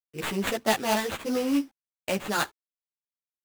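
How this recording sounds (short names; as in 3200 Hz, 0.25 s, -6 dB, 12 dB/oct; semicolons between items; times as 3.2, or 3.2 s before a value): a quantiser's noise floor 10-bit, dither none; tremolo triangle 4.6 Hz, depth 55%; aliases and images of a low sample rate 5400 Hz, jitter 20%; a shimmering, thickened sound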